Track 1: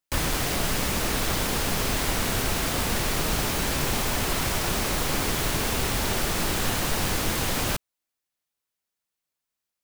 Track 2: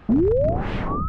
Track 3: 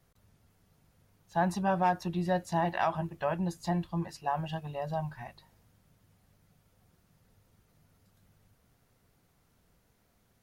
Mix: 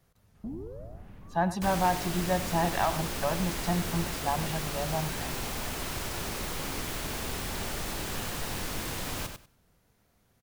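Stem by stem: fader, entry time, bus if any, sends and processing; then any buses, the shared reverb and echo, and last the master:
-9.5 dB, 1.50 s, no send, echo send -7 dB, dry
-14.5 dB, 0.35 s, no send, echo send -17.5 dB, soft clip -13.5 dBFS, distortion -20 dB; low shelf 220 Hz +10 dB; auto duck -17 dB, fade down 1.05 s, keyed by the third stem
+1.0 dB, 0.00 s, no send, echo send -15 dB, dry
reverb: off
echo: feedback echo 96 ms, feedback 17%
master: dry

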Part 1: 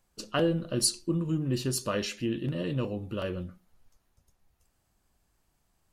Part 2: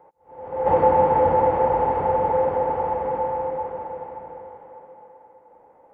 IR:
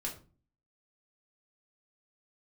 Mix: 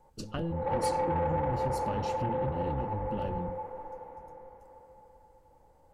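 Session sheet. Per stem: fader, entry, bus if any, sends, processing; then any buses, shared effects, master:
-4.5 dB, 0.00 s, no send, octaver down 1 oct, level -1 dB; low shelf 440 Hz +11.5 dB; compressor 4:1, threshold -28 dBFS, peak gain reduction 13.5 dB
-14.0 dB, 0.00 s, send -4.5 dB, notch 650 Hz, Q 19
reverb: on, RT60 0.35 s, pre-delay 3 ms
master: soft clip -22 dBFS, distortion -18 dB

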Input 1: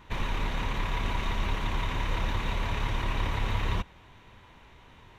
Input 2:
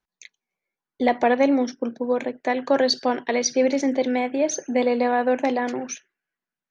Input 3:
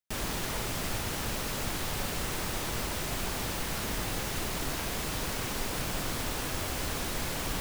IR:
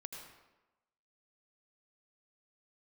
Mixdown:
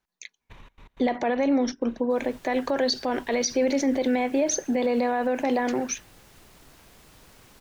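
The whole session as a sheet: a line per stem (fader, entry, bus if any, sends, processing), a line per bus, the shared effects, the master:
-7.5 dB, 0.40 s, no send, compressor 6:1, threshold -33 dBFS, peak gain reduction 10 dB; step gate ".xx.x.xx." 159 bpm -24 dB; auto duck -7 dB, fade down 1.25 s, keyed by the second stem
+2.5 dB, 0.00 s, no send, dry
-19.5 dB, 2.00 s, no send, dry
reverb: off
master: limiter -15.5 dBFS, peak gain reduction 10.5 dB

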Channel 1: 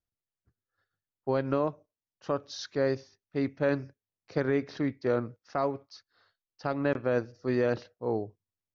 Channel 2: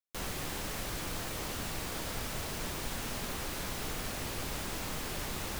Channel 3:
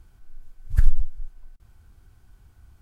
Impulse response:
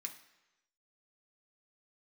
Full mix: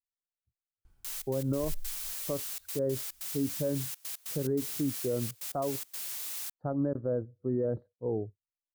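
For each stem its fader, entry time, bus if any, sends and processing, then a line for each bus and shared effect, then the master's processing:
+1.0 dB, 0.00 s, no send, running mean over 17 samples; low shelf 130 Hz +9.5 dB; spectral expander 1.5:1
+3.0 dB, 0.90 s, no send, differentiator; step gate "xxx.x.xx.xxxx" 143 bpm -24 dB
-0.5 dB, 0.85 s, no send, resonator 280 Hz, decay 0.75 s, mix 70%; auto duck -11 dB, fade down 0.40 s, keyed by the first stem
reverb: off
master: limiter -22 dBFS, peak gain reduction 9 dB

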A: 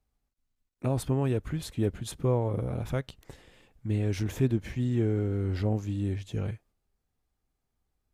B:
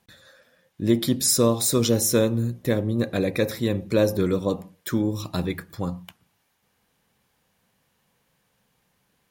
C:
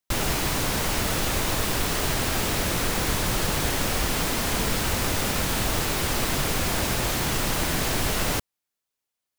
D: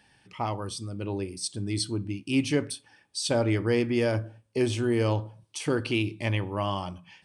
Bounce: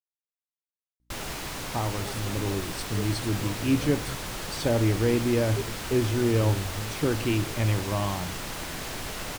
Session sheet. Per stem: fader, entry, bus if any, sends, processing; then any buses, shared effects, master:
-11.0 dB, 1.15 s, no send, phaser 0.37 Hz, delay 3.5 ms, feedback 74%
off
-8.0 dB, 1.00 s, no send, high shelf 11000 Hz -5.5 dB; hum 60 Hz, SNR 35 dB
-1.0 dB, 1.35 s, no send, tilt -2.5 dB/oct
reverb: off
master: low shelf 430 Hz -3.5 dB

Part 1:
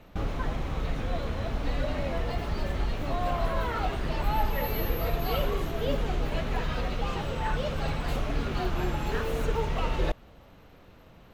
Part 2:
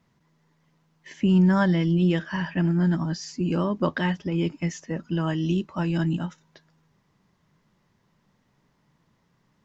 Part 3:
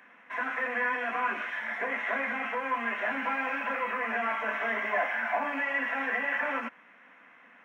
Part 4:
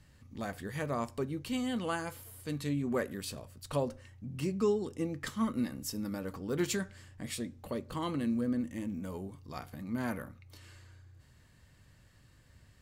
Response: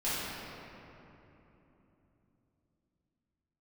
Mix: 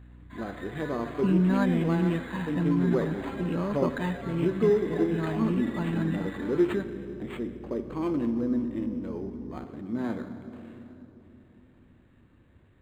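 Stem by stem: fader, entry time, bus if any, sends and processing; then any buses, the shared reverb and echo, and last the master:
off
-5.0 dB, 0.00 s, no send, hum 60 Hz, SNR 18 dB
-12.5 dB, 0.00 s, no send, dry
-1.5 dB, 0.00 s, send -15.5 dB, bell 350 Hz +11 dB 0.78 oct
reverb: on, RT60 3.3 s, pre-delay 4 ms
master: decimation joined by straight lines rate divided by 8×

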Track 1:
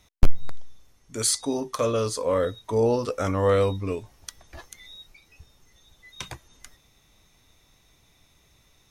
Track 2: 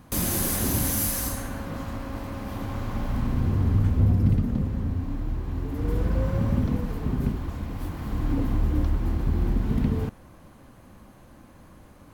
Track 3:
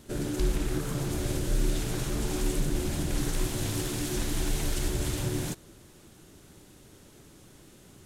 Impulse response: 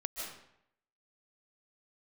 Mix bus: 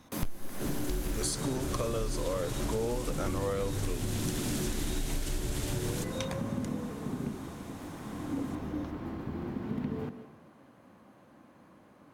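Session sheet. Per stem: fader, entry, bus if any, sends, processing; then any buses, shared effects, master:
-3.0 dB, 0.00 s, send -17 dB, dry
-7.0 dB, 0.00 s, send -7 dB, HPF 180 Hz 12 dB/oct; high shelf 4500 Hz -10.5 dB
-1.5 dB, 0.50 s, send -7 dB, dry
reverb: on, RT60 0.75 s, pre-delay 0.11 s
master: compressor 10:1, threshold -28 dBFS, peak gain reduction 19 dB

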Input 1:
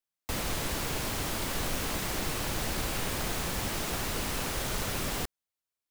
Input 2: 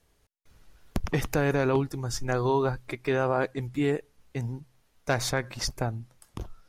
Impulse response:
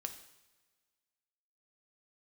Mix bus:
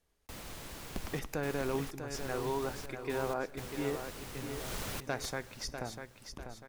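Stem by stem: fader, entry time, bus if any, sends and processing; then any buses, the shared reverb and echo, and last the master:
4.49 s -13.5 dB -> 4.72 s -6.5 dB, 0.00 s, no send, echo send -16 dB, step gate "xxxxx.xx.xxx.x.x" 63 bpm -24 dB
-12.0 dB, 0.00 s, send -7 dB, echo send -5.5 dB, bell 110 Hz -9.5 dB 0.55 oct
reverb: on, pre-delay 3 ms
echo: feedback echo 0.646 s, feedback 42%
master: dry

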